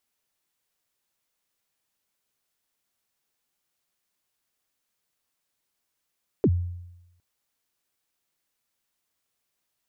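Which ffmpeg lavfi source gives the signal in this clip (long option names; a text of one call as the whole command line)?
ffmpeg -f lavfi -i "aevalsrc='0.188*pow(10,-3*t/0.93)*sin(2*PI*(480*0.055/log(88/480)*(exp(log(88/480)*min(t,0.055)/0.055)-1)+88*max(t-0.055,0)))':duration=0.76:sample_rate=44100" out.wav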